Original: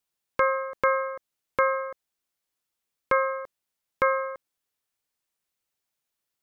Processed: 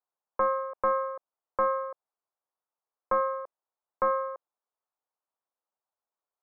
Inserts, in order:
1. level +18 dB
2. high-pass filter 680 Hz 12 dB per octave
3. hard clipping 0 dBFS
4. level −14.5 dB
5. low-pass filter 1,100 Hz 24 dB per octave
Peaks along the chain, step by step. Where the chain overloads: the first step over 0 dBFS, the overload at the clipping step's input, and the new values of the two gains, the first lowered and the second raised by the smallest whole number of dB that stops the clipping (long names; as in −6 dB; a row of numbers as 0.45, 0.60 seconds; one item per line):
+7.5, +7.0, 0.0, −14.5, −15.0 dBFS
step 1, 7.0 dB
step 1 +11 dB, step 4 −7.5 dB